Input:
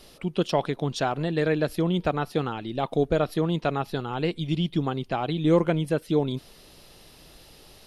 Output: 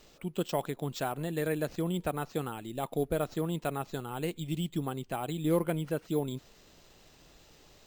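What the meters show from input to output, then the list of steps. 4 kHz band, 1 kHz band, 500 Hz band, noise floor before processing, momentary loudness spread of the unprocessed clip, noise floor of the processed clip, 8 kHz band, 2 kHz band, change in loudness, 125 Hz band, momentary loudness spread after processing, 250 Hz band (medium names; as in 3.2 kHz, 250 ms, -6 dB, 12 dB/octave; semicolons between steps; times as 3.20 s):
-9.0 dB, -7.5 dB, -7.5 dB, -52 dBFS, 7 LU, -60 dBFS, no reading, -8.0 dB, -7.5 dB, -7.5 dB, 7 LU, -7.5 dB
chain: careless resampling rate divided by 4×, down none, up hold; trim -7.5 dB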